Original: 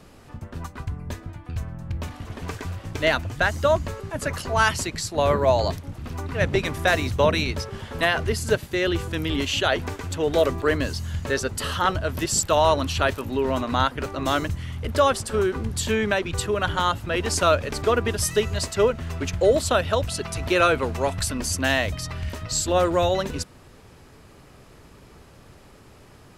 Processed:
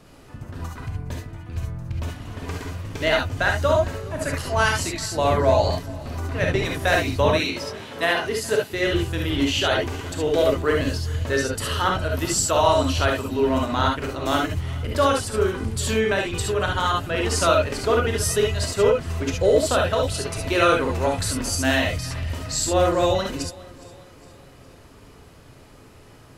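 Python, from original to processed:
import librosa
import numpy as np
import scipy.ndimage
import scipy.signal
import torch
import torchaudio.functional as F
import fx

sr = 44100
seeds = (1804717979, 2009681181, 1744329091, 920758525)

y = fx.highpass(x, sr, hz=210.0, slope=12, at=(7.33, 8.72))
y = fx.echo_feedback(y, sr, ms=412, feedback_pct=51, wet_db=-21.5)
y = fx.rev_gated(y, sr, seeds[0], gate_ms=90, shape='rising', drr_db=0.0)
y = y * 10.0 ** (-2.0 / 20.0)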